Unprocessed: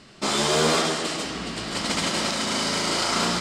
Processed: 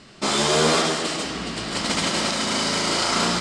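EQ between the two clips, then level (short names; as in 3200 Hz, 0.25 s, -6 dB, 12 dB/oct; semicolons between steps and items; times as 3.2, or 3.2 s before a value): LPF 11000 Hz 24 dB/oct; +2.0 dB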